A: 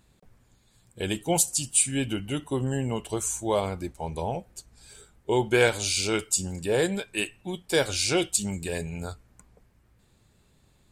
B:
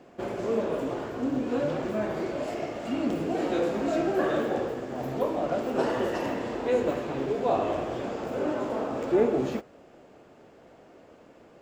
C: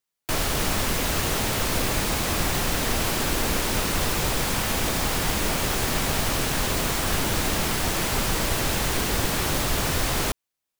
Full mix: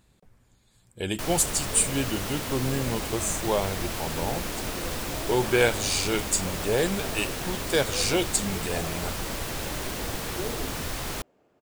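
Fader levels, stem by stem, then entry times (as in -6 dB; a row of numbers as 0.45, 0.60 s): -0.5, -12.5, -8.0 dB; 0.00, 1.25, 0.90 s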